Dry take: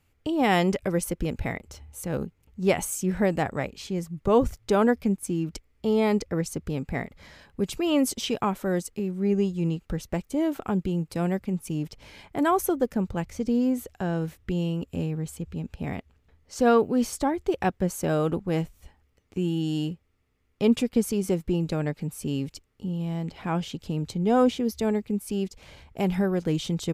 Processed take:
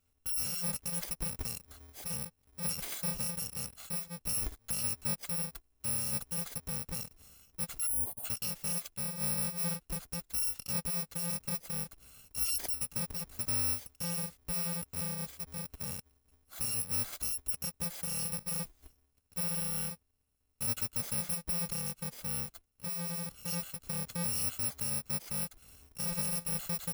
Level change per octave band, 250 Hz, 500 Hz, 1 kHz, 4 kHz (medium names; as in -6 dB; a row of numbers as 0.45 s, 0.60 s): -19.0 dB, -23.0 dB, -18.0 dB, -3.0 dB